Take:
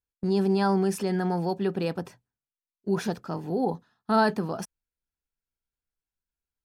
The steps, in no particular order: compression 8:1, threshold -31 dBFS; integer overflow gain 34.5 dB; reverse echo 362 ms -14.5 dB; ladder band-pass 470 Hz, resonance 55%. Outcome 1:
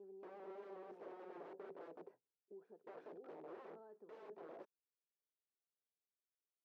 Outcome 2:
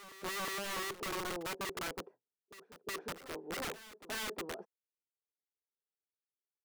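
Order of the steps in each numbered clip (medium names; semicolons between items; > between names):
compression > reverse echo > integer overflow > ladder band-pass; ladder band-pass > compression > integer overflow > reverse echo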